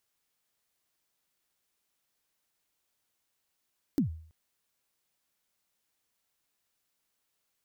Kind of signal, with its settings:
synth kick length 0.33 s, from 320 Hz, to 80 Hz, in 112 ms, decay 0.52 s, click on, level −20 dB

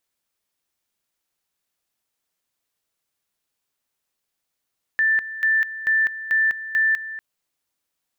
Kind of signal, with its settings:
tone at two levels in turn 1,770 Hz −15.5 dBFS, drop 14 dB, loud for 0.20 s, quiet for 0.24 s, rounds 5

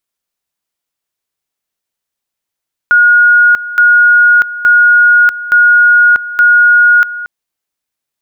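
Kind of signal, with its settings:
tone at two levels in turn 1,440 Hz −3 dBFS, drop 15.5 dB, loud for 0.64 s, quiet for 0.23 s, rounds 5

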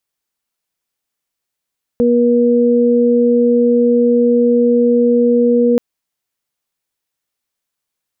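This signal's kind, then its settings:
steady harmonic partials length 3.78 s, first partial 240 Hz, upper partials 1 dB, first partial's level −12 dB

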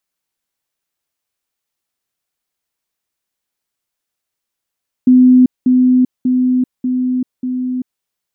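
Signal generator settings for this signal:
level staircase 253 Hz −4 dBFS, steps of −3 dB, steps 5, 0.39 s 0.20 s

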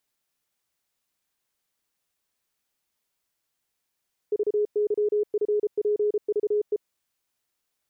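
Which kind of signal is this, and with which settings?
Morse code "VYFPVE" 33 words per minute 418 Hz −20 dBFS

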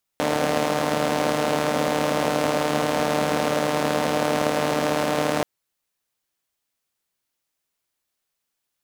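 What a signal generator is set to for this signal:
pulse-train model of a four-cylinder engine, steady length 5.23 s, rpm 4,500, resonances 260/530 Hz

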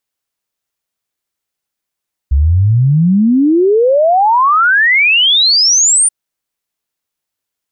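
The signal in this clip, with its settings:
exponential sine sweep 65 Hz → 9,400 Hz 3.78 s −6.5 dBFS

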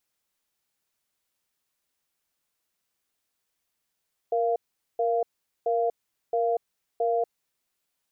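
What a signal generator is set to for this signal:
tone pair in a cadence 468 Hz, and 691 Hz, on 0.24 s, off 0.43 s, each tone −24.5 dBFS 2.92 s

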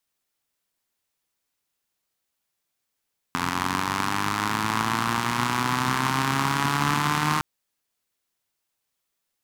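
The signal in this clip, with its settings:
pulse-train model of a four-cylinder engine, changing speed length 4.06 s, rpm 2,600, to 4,600, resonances 150/240/1,000 Hz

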